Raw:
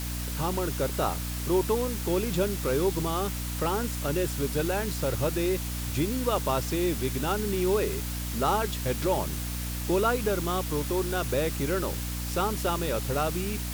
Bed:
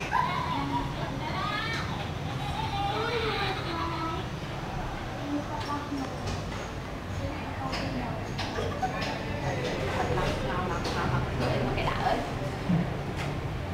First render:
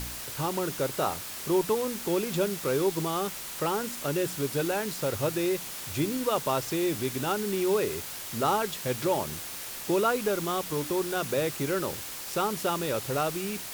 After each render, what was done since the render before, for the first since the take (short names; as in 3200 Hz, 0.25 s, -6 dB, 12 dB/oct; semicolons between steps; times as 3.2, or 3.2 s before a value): de-hum 60 Hz, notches 5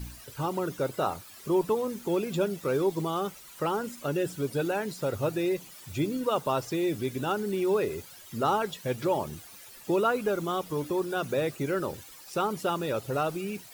denoiser 14 dB, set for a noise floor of -39 dBFS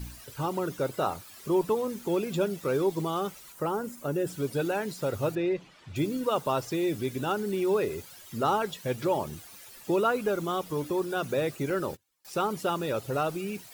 3.52–4.27 bell 3300 Hz -8.5 dB 1.9 oct; 5.35–5.96 LPF 3100 Hz; 11.7–12.25 gate -40 dBFS, range -30 dB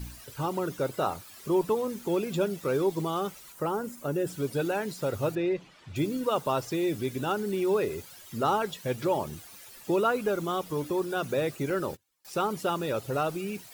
nothing audible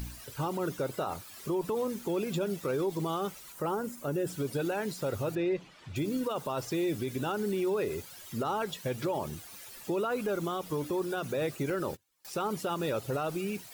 limiter -23.5 dBFS, peak gain reduction 9.5 dB; upward compressor, threshold -43 dBFS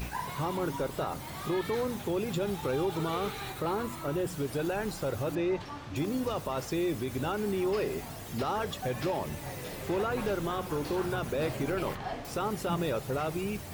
add bed -10 dB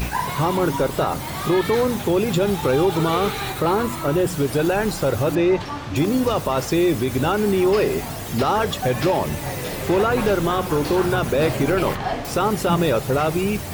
gain +12 dB